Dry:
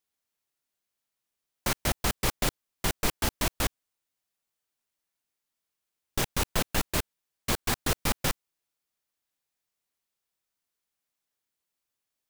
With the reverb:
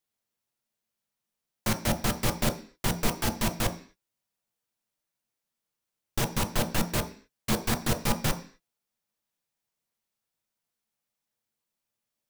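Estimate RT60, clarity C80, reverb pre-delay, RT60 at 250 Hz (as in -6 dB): 0.45 s, 17.0 dB, 8 ms, 0.55 s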